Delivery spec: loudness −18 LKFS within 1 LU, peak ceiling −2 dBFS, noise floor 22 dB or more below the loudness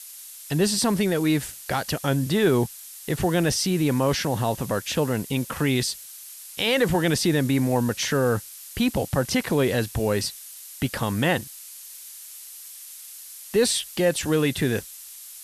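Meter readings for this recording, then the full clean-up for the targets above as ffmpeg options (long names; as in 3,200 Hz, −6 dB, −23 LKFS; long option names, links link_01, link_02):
background noise floor −42 dBFS; target noise floor −46 dBFS; integrated loudness −24.0 LKFS; sample peak −9.0 dBFS; target loudness −18.0 LKFS
→ -af "afftdn=noise_reduction=6:noise_floor=-42"
-af "volume=6dB"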